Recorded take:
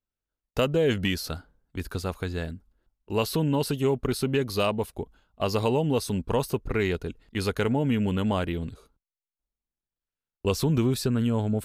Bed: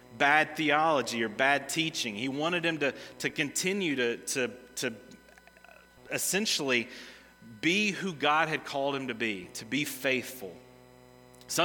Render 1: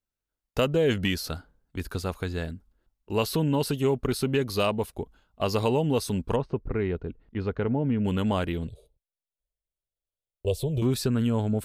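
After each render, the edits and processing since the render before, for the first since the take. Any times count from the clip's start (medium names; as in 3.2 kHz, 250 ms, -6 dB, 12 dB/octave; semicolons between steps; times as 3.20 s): 6.36–8.05 s: tape spacing loss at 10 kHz 44 dB; 8.67–10.82 s: FFT filter 130 Hz 0 dB, 240 Hz -18 dB, 390 Hz -3 dB, 600 Hz +4 dB, 1.3 kHz -30 dB, 3.4 kHz -2 dB, 5.6 kHz -15 dB, 9.1 kHz -2 dB, 13 kHz -6 dB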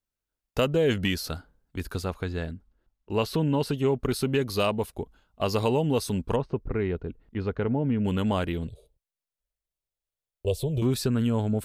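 2.05–4.00 s: treble shelf 6.5 kHz -10.5 dB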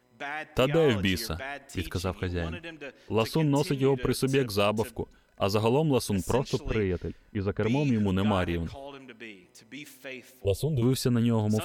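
add bed -12 dB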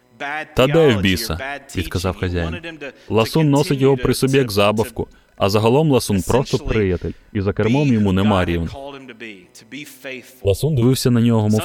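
trim +10 dB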